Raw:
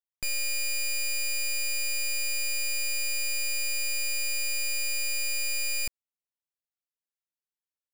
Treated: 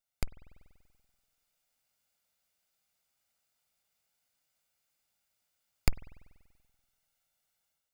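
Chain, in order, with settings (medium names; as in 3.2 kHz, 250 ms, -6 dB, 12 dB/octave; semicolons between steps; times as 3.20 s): comb filter that takes the minimum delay 1.4 ms; spring tank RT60 1.4 s, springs 48 ms, chirp 50 ms, DRR 17.5 dB; level rider gain up to 8 dB; trim +7.5 dB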